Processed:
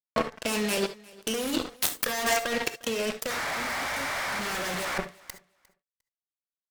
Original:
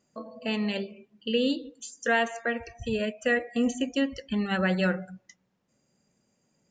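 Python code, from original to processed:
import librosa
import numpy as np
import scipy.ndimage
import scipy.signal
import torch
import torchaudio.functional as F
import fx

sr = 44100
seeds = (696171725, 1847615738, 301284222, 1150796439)

p1 = fx.tracing_dist(x, sr, depth_ms=0.35)
p2 = scipy.signal.sosfilt(scipy.signal.butter(2, 270.0, 'highpass', fs=sr, output='sos'), p1)
p3 = fx.peak_eq(p2, sr, hz=5400.0, db=5.0, octaves=2.8)
p4 = fx.power_curve(p3, sr, exponent=0.35, at=(4.39, 4.85))
p5 = fx.spec_paint(p4, sr, seeds[0], shape='noise', start_s=3.3, length_s=1.68, low_hz=530.0, high_hz=2400.0, level_db=-18.0)
p6 = fx.fuzz(p5, sr, gain_db=33.0, gate_db=-40.0)
p7 = fx.over_compress(p6, sr, threshold_db=-23.0, ratio=-1.0)
p8 = p7 + fx.echo_feedback(p7, sr, ms=353, feedback_pct=16, wet_db=-23, dry=0)
p9 = fx.rev_gated(p8, sr, seeds[1], gate_ms=90, shape='rising', drr_db=10.0)
y = p9 * 10.0 ** (-6.5 / 20.0)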